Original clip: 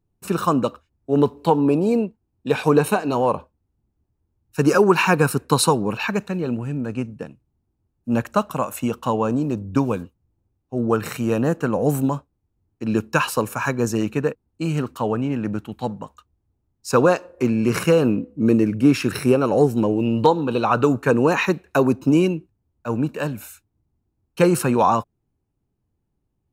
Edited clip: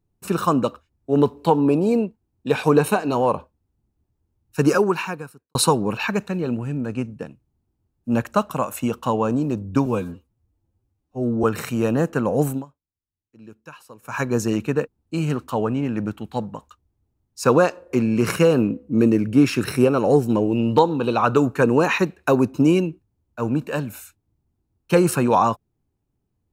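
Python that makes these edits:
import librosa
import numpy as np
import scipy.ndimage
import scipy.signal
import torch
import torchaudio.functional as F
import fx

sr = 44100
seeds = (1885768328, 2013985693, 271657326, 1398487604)

y = fx.edit(x, sr, fx.fade_out_span(start_s=4.67, length_s=0.88, curve='qua'),
    fx.stretch_span(start_s=9.86, length_s=1.05, factor=1.5),
    fx.fade_down_up(start_s=11.84, length_s=1.95, db=-22.5, fade_s=0.29, curve='qsin'), tone=tone)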